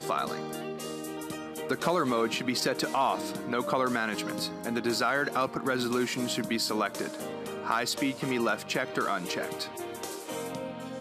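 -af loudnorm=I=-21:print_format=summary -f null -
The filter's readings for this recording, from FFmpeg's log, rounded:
Input Integrated:    -30.9 LUFS
Input True Peak:     -12.0 dBTP
Input LRA:             3.2 LU
Input Threshold:     -40.9 LUFS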